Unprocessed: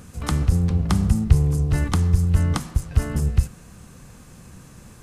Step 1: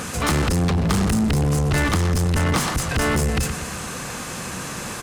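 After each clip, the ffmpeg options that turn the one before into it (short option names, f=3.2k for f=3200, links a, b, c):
-filter_complex "[0:a]aecho=1:1:119|238|357|476:0.126|0.0667|0.0354|0.0187,asoftclip=type=tanh:threshold=-19dB,asplit=2[a][b];[b]highpass=f=720:p=1,volume=23dB,asoftclip=type=tanh:threshold=-19dB[c];[a][c]amix=inputs=2:normalize=0,lowpass=f=6k:p=1,volume=-6dB,volume=6dB"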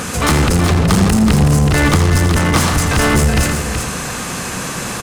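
-af "aecho=1:1:83|374:0.316|0.447,volume=6.5dB"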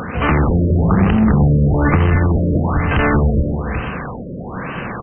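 -af "afftfilt=real='re*lt(b*sr/1024,610*pow(3200/610,0.5+0.5*sin(2*PI*1.1*pts/sr)))':imag='im*lt(b*sr/1024,610*pow(3200/610,0.5+0.5*sin(2*PI*1.1*pts/sr)))':win_size=1024:overlap=0.75,volume=-1dB"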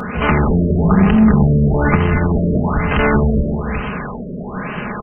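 -af "aecho=1:1:4.8:0.53"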